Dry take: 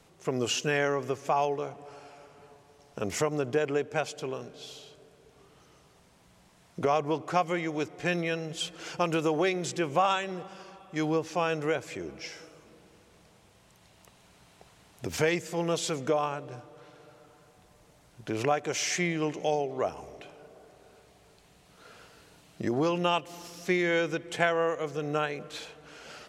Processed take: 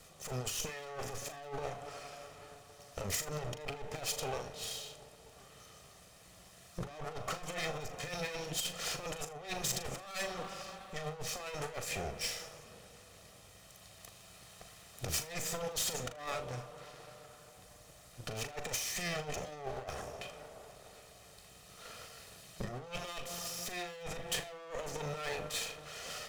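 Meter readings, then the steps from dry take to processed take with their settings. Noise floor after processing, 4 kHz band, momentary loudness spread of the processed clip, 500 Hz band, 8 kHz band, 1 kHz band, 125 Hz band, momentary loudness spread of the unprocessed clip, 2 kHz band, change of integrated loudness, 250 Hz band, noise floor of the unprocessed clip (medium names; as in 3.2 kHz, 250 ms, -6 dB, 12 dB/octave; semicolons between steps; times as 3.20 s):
-58 dBFS, -3.0 dB, 19 LU, -13.0 dB, +0.5 dB, -12.0 dB, -7.5 dB, 18 LU, -9.5 dB, -9.5 dB, -16.0 dB, -60 dBFS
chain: comb filter that takes the minimum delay 1.6 ms; saturation -27.5 dBFS, distortion -10 dB; compressor with a negative ratio -38 dBFS, ratio -0.5; treble shelf 3.7 kHz +7.5 dB; flutter echo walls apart 6.8 m, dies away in 0.23 s; trim -2 dB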